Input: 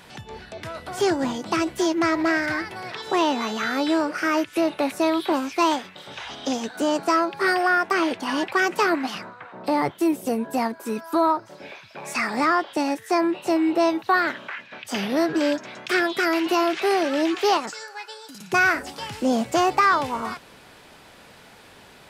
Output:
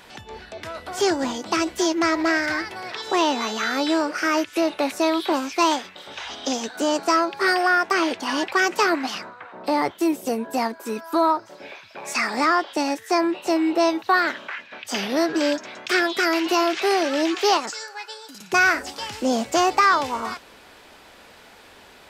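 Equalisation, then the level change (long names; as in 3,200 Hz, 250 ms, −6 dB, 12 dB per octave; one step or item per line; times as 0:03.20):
dynamic equaliser 6,000 Hz, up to +5 dB, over −44 dBFS, Q 0.93
parametric band 140 Hz −10 dB 0.91 octaves
parametric band 9,800 Hz −4 dB 0.3 octaves
+1.0 dB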